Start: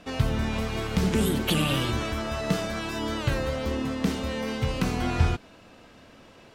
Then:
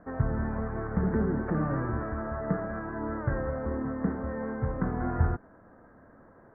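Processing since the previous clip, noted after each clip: steep low-pass 1.8 kHz 72 dB/octave; trim -3 dB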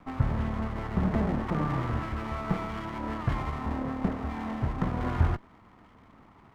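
comb filter that takes the minimum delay 0.92 ms; trim +1.5 dB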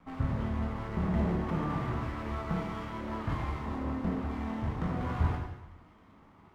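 plate-style reverb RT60 0.92 s, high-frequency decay 1×, DRR -1.5 dB; trim -7 dB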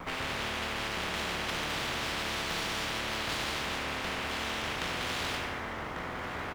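delay 1145 ms -15 dB; spectrum-flattening compressor 10:1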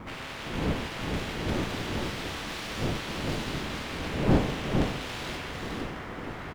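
wind noise 340 Hz -29 dBFS; delay 457 ms -4 dB; trim -4.5 dB

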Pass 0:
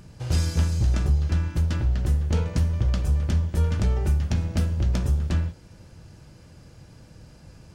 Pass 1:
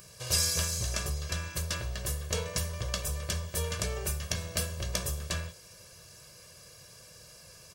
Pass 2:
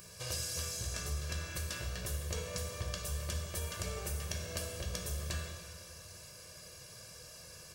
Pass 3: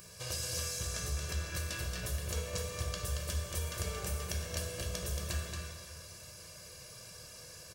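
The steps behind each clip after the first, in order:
RIAA curve recording; comb 1.8 ms, depth 80%; trim -3 dB
compression, threshold -36 dBFS, peak gain reduction 12.5 dB; plate-style reverb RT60 1.9 s, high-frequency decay 0.9×, DRR 2 dB; trim -1.5 dB
delay 227 ms -4.5 dB

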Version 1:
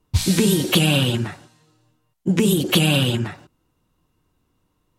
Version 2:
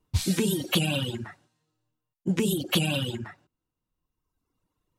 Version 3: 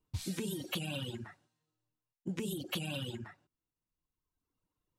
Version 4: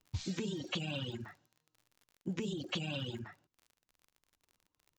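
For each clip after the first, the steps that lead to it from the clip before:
reverb removal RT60 1.4 s; trim -6.5 dB
compression, threshold -25 dBFS, peak gain reduction 6.5 dB; trim -8.5 dB
resampled via 16 kHz; crackle 55 per s -50 dBFS

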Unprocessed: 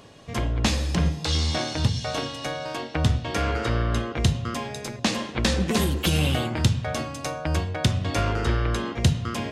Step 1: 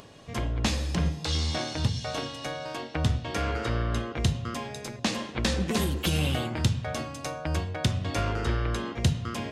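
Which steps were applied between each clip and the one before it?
upward compressor, threshold -41 dBFS; trim -4 dB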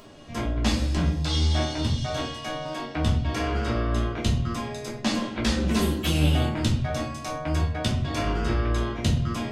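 simulated room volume 220 m³, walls furnished, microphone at 2.9 m; trim -4 dB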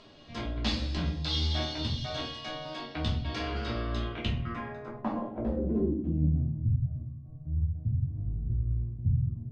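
low-pass sweep 4.2 kHz -> 120 Hz, 3.97–6.70 s; trim -7.5 dB

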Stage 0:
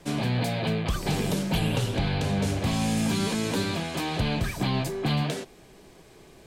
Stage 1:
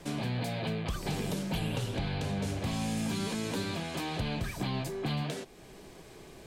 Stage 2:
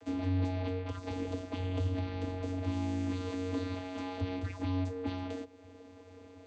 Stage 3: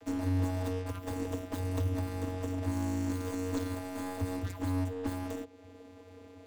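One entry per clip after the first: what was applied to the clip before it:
compression 1.5:1, threshold -47 dBFS, peak gain reduction 9 dB; trim +1.5 dB
vocoder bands 16, square 92.2 Hz
tracing distortion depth 0.42 ms; trim +1 dB

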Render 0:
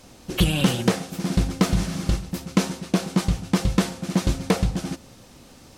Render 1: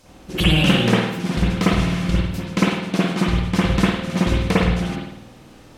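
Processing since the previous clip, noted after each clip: dynamic bell 2.5 kHz, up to +6 dB, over -43 dBFS, Q 0.74; reverberation RT60 0.80 s, pre-delay 51 ms, DRR -7 dB; trim -4 dB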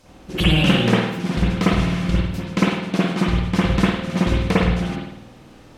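treble shelf 5.6 kHz -5 dB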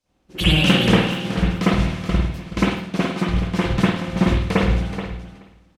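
on a send: feedback delay 427 ms, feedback 22%, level -7 dB; on the sum: three bands expanded up and down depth 70%; trim -1.5 dB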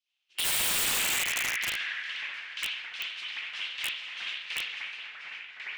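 ladder band-pass 3.3 kHz, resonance 55%; ever faster or slower copies 244 ms, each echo -3 st, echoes 3, each echo -6 dB; integer overflow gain 26.5 dB; trim +4 dB

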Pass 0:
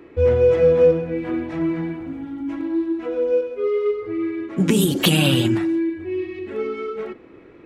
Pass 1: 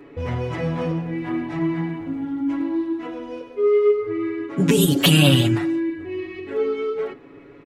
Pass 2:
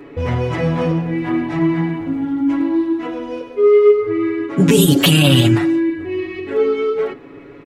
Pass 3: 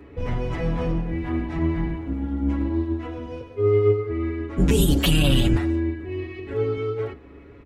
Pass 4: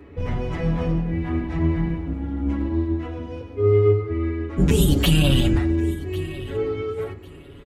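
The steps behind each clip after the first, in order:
comb 7.1 ms, depth 89%; trim -1 dB
loudness maximiser +7.5 dB; trim -1 dB
octave divider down 2 oct, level +2 dB; trim -9 dB
feedback delay 1098 ms, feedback 24%, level -19 dB; on a send at -16 dB: reverberation RT60 0.45 s, pre-delay 3 ms

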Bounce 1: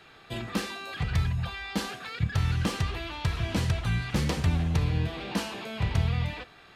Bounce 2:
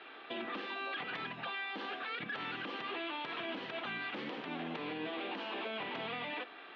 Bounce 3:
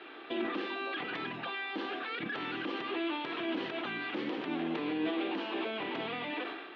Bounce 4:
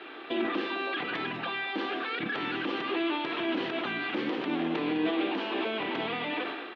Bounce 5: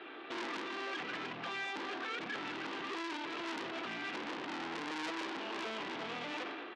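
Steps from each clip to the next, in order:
elliptic band-pass 270–3300 Hz, stop band 50 dB; compression 12:1, threshold -38 dBFS, peak gain reduction 11 dB; peak limiter -34 dBFS, peak gain reduction 8 dB; trim +3 dB
peaking EQ 330 Hz +9.5 dB 0.58 oct; decay stretcher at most 42 dB/s; trim +1.5 dB
delay 205 ms -12.5 dB; trim +4.5 dB
distance through air 88 m; transformer saturation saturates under 3.4 kHz; trim -3.5 dB

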